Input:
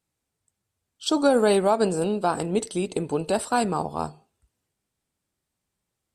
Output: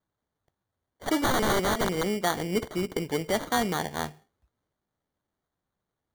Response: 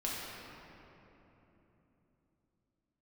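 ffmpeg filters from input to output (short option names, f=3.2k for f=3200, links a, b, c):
-filter_complex "[0:a]acrusher=samples=17:mix=1:aa=0.000001,asettb=1/sr,asplit=3[a][b][c];[a]atrim=end=1.234[d];[b]atrim=start=1.23:end=2.12,asetpts=PTS-STARTPTS,afade=t=in:d=0.004:c=qsin,afade=t=out:st=0.886:d=0.004:c=qsin,aeval=exprs='(mod(6.31*val(0)+1,2)-1)/6.31':c=same[e];[c]atrim=start=2.116[f];[d][e]acrossfade=d=0.004:c1=hsin:c2=qsin[g];[g][f]acrossfade=d=0.004:c1=qsin:c2=hsin,volume=-3dB"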